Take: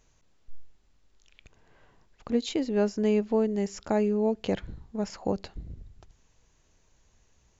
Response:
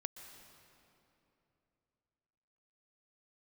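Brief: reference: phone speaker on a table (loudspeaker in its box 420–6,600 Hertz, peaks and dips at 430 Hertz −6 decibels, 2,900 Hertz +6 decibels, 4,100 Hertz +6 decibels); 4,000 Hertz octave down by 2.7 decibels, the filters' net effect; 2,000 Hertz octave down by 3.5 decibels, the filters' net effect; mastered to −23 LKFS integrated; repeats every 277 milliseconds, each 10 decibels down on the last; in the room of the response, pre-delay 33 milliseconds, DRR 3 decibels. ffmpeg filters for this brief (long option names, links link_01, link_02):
-filter_complex "[0:a]equalizer=frequency=2000:width_type=o:gain=-4,equalizer=frequency=4000:width_type=o:gain=-8.5,aecho=1:1:277|554|831|1108:0.316|0.101|0.0324|0.0104,asplit=2[link_01][link_02];[1:a]atrim=start_sample=2205,adelay=33[link_03];[link_02][link_03]afir=irnorm=-1:irlink=0,volume=-0.5dB[link_04];[link_01][link_04]amix=inputs=2:normalize=0,highpass=frequency=420:width=0.5412,highpass=frequency=420:width=1.3066,equalizer=frequency=430:width_type=q:width=4:gain=-6,equalizer=frequency=2900:width_type=q:width=4:gain=6,equalizer=frequency=4100:width_type=q:width=4:gain=6,lowpass=frequency=6600:width=0.5412,lowpass=frequency=6600:width=1.3066,volume=11.5dB"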